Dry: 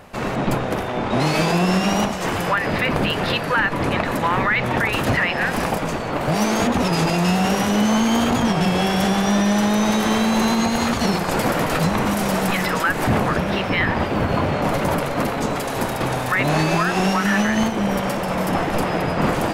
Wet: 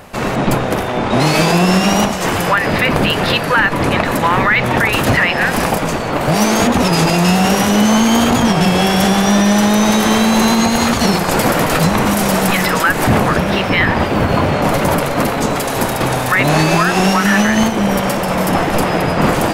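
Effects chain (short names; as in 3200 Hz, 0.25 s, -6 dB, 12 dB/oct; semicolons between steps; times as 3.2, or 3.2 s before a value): high shelf 5800 Hz +5 dB; gain +6 dB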